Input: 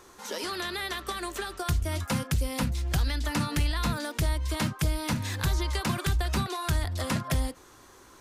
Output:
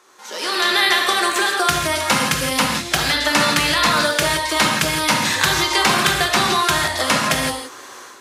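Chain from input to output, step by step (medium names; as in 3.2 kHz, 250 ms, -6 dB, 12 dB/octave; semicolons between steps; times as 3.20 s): frequency weighting A; level rider gain up to 16 dB; gated-style reverb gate 190 ms flat, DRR 0.5 dB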